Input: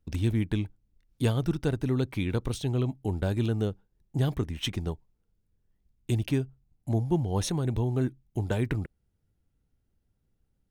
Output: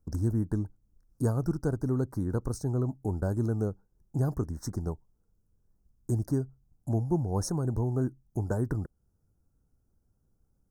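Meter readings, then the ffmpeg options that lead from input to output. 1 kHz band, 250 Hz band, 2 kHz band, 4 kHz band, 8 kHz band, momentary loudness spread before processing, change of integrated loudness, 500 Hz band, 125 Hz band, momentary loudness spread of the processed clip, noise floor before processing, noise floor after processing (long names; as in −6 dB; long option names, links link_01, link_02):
−1.5 dB, −1.5 dB, −9.0 dB, −14.0 dB, −1.5 dB, 9 LU, −1.5 dB, −1.5 dB, −1.5 dB, 9 LU, −75 dBFS, −73 dBFS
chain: -filter_complex "[0:a]asplit=2[link_01][link_02];[link_02]acompressor=threshold=-40dB:ratio=6,volume=-2.5dB[link_03];[link_01][link_03]amix=inputs=2:normalize=0,asuperstop=centerf=2800:order=8:qfactor=0.77,volume=-2.5dB"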